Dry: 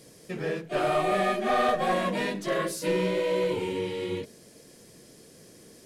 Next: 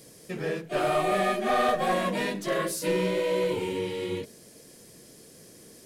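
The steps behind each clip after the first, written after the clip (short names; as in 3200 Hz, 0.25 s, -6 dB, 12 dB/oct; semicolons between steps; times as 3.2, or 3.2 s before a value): high shelf 10000 Hz +8 dB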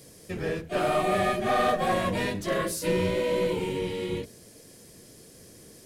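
octaver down 1 oct, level -4 dB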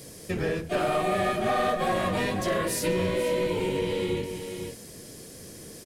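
echo 0.491 s -11 dB; compressor 2.5:1, threshold -32 dBFS, peak gain reduction 8 dB; gain +6 dB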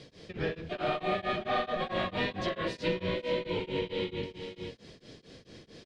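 ladder low-pass 4500 Hz, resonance 40%; beating tremolo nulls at 4.5 Hz; gain +5 dB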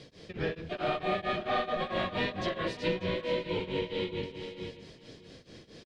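echo 0.592 s -16 dB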